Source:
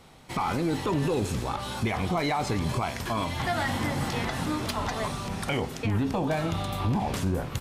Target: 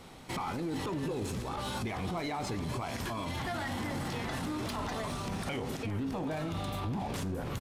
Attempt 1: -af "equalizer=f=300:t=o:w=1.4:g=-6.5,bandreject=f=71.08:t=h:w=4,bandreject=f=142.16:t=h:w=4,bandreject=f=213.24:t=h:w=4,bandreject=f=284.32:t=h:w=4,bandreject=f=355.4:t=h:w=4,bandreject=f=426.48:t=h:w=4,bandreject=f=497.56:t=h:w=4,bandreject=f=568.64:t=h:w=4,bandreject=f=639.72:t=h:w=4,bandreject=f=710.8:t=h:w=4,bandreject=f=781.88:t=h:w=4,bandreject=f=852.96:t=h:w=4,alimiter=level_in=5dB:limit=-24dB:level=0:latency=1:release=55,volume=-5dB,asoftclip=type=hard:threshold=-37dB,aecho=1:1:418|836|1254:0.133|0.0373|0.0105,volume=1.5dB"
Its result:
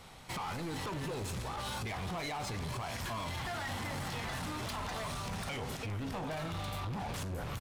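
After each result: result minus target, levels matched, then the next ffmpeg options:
hard clip: distortion +14 dB; 250 Hz band -4.0 dB
-af "equalizer=f=300:t=o:w=1.4:g=-6.5,bandreject=f=71.08:t=h:w=4,bandreject=f=142.16:t=h:w=4,bandreject=f=213.24:t=h:w=4,bandreject=f=284.32:t=h:w=4,bandreject=f=355.4:t=h:w=4,bandreject=f=426.48:t=h:w=4,bandreject=f=497.56:t=h:w=4,bandreject=f=568.64:t=h:w=4,bandreject=f=639.72:t=h:w=4,bandreject=f=710.8:t=h:w=4,bandreject=f=781.88:t=h:w=4,bandreject=f=852.96:t=h:w=4,alimiter=level_in=5dB:limit=-24dB:level=0:latency=1:release=55,volume=-5dB,asoftclip=type=hard:threshold=-31dB,aecho=1:1:418|836|1254:0.133|0.0373|0.0105,volume=1.5dB"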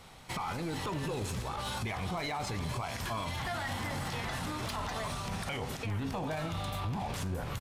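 250 Hz band -3.5 dB
-af "equalizer=f=300:t=o:w=1.4:g=3,bandreject=f=71.08:t=h:w=4,bandreject=f=142.16:t=h:w=4,bandreject=f=213.24:t=h:w=4,bandreject=f=284.32:t=h:w=4,bandreject=f=355.4:t=h:w=4,bandreject=f=426.48:t=h:w=4,bandreject=f=497.56:t=h:w=4,bandreject=f=568.64:t=h:w=4,bandreject=f=639.72:t=h:w=4,bandreject=f=710.8:t=h:w=4,bandreject=f=781.88:t=h:w=4,bandreject=f=852.96:t=h:w=4,alimiter=level_in=5dB:limit=-24dB:level=0:latency=1:release=55,volume=-5dB,asoftclip=type=hard:threshold=-31dB,aecho=1:1:418|836|1254:0.133|0.0373|0.0105,volume=1.5dB"

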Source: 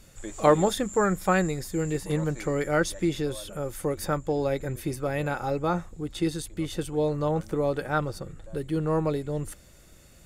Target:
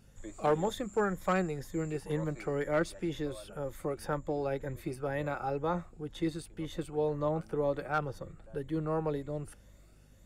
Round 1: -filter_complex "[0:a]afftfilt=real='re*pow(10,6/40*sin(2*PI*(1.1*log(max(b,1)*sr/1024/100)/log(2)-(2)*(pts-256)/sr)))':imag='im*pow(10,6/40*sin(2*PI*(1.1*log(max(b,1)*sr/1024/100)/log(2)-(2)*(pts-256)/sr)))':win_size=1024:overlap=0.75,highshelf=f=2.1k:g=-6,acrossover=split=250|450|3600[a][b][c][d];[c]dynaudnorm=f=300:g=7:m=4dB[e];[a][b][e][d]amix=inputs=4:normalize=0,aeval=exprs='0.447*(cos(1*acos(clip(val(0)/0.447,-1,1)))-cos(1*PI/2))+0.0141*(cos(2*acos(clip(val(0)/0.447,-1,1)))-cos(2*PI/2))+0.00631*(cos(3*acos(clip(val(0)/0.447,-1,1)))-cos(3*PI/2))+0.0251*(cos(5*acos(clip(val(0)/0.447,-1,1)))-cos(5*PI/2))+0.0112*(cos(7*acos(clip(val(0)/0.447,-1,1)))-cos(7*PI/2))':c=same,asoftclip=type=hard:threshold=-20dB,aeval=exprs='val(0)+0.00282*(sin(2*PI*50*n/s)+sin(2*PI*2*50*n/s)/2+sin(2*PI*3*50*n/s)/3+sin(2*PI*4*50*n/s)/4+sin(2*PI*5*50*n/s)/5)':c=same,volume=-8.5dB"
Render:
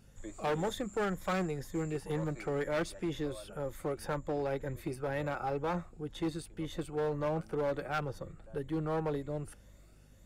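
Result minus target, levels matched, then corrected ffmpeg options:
hard clip: distortion +16 dB
-filter_complex "[0:a]afftfilt=real='re*pow(10,6/40*sin(2*PI*(1.1*log(max(b,1)*sr/1024/100)/log(2)-(2)*(pts-256)/sr)))':imag='im*pow(10,6/40*sin(2*PI*(1.1*log(max(b,1)*sr/1024/100)/log(2)-(2)*(pts-256)/sr)))':win_size=1024:overlap=0.75,highshelf=f=2.1k:g=-6,acrossover=split=250|450|3600[a][b][c][d];[c]dynaudnorm=f=300:g=7:m=4dB[e];[a][b][e][d]amix=inputs=4:normalize=0,aeval=exprs='0.447*(cos(1*acos(clip(val(0)/0.447,-1,1)))-cos(1*PI/2))+0.0141*(cos(2*acos(clip(val(0)/0.447,-1,1)))-cos(2*PI/2))+0.00631*(cos(3*acos(clip(val(0)/0.447,-1,1)))-cos(3*PI/2))+0.0251*(cos(5*acos(clip(val(0)/0.447,-1,1)))-cos(5*PI/2))+0.0112*(cos(7*acos(clip(val(0)/0.447,-1,1)))-cos(7*PI/2))':c=same,asoftclip=type=hard:threshold=-12.5dB,aeval=exprs='val(0)+0.00282*(sin(2*PI*50*n/s)+sin(2*PI*2*50*n/s)/2+sin(2*PI*3*50*n/s)/3+sin(2*PI*4*50*n/s)/4+sin(2*PI*5*50*n/s)/5)':c=same,volume=-8.5dB"

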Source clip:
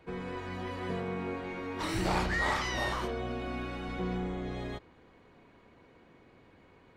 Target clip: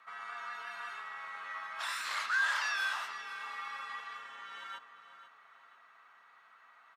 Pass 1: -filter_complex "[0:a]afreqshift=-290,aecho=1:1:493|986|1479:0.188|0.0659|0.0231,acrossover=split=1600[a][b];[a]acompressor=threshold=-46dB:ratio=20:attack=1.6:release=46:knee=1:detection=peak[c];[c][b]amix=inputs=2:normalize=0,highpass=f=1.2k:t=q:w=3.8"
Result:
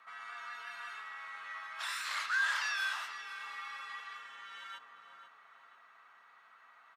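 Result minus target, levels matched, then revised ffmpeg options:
compressor: peak gain reduction +6 dB
-filter_complex "[0:a]afreqshift=-290,aecho=1:1:493|986|1479:0.188|0.0659|0.0231,acrossover=split=1600[a][b];[a]acompressor=threshold=-39.5dB:ratio=20:attack=1.6:release=46:knee=1:detection=peak[c];[c][b]amix=inputs=2:normalize=0,highpass=f=1.2k:t=q:w=3.8"

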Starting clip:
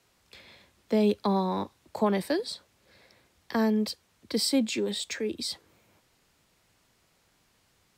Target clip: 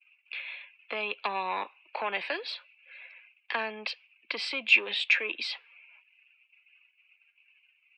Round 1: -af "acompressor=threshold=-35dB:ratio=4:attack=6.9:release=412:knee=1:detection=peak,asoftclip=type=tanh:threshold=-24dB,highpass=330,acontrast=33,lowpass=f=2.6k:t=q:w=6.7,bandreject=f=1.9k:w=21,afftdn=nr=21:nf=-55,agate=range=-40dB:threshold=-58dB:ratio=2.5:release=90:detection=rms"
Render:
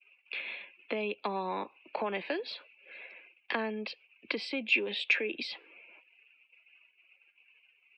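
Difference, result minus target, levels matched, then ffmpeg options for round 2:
250 Hz band +12.0 dB; compressor: peak gain reduction +7 dB
-af "acompressor=threshold=-25.5dB:ratio=4:attack=6.9:release=412:knee=1:detection=peak,asoftclip=type=tanh:threshold=-24dB,highpass=800,acontrast=33,lowpass=f=2.6k:t=q:w=6.7,bandreject=f=1.9k:w=21,afftdn=nr=21:nf=-55,agate=range=-40dB:threshold=-58dB:ratio=2.5:release=90:detection=rms"

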